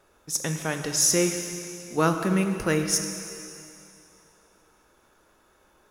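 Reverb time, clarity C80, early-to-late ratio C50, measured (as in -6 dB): 2.7 s, 7.0 dB, 6.5 dB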